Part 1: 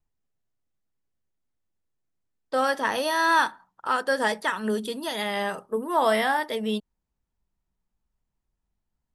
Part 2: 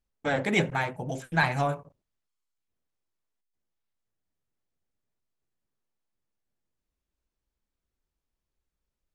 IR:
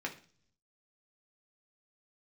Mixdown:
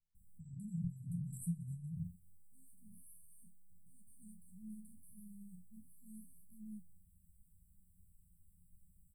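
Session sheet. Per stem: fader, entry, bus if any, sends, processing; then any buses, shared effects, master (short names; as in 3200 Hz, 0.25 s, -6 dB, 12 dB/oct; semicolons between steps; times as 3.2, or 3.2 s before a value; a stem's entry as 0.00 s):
-4.0 dB, 0.00 s, no send, notch 8000 Hz, Q 6.9
-6.0 dB, 0.15 s, no send, low shelf 180 Hz -7.5 dB; fast leveller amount 100%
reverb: off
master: brick-wall FIR band-stop 220–7600 Hz; high shelf 3100 Hz -9 dB; resonator 88 Hz, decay 0.22 s, harmonics all, mix 90%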